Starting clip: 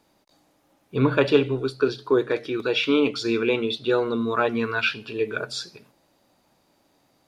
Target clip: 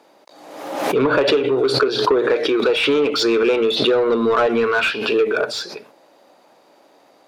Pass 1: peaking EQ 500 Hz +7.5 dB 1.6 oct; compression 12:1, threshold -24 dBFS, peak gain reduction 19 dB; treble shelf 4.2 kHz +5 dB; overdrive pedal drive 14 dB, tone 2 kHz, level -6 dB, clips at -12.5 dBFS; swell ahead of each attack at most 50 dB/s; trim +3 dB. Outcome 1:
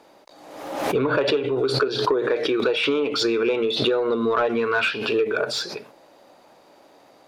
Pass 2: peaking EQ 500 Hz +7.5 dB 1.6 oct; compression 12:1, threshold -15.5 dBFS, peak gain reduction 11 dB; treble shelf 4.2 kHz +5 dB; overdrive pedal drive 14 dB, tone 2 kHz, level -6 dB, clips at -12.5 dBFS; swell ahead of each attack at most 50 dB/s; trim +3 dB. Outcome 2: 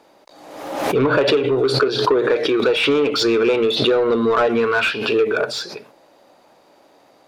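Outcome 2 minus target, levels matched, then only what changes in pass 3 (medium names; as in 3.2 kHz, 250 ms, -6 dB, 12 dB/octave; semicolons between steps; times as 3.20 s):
125 Hz band +5.0 dB
add first: high-pass 170 Hz 12 dB/octave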